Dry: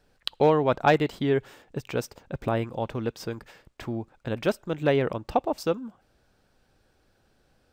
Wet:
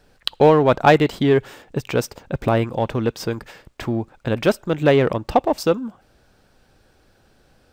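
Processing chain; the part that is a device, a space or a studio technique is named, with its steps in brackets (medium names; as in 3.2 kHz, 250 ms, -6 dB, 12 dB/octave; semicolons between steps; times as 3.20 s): parallel distortion (in parallel at -8.5 dB: hard clipper -24 dBFS, distortion -6 dB); on the sum: trim +6 dB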